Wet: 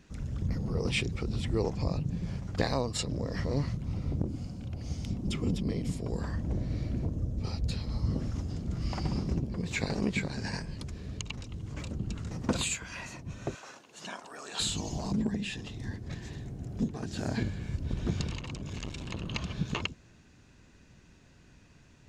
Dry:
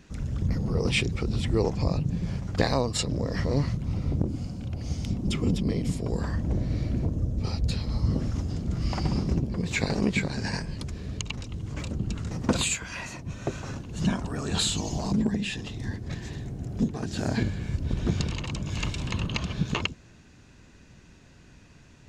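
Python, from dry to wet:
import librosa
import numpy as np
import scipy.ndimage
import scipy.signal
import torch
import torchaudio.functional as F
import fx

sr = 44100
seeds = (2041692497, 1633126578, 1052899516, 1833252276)

y = fx.highpass(x, sr, hz=610.0, slope=12, at=(13.55, 14.6))
y = fx.transformer_sat(y, sr, knee_hz=390.0, at=(18.38, 19.27))
y = y * librosa.db_to_amplitude(-5.0)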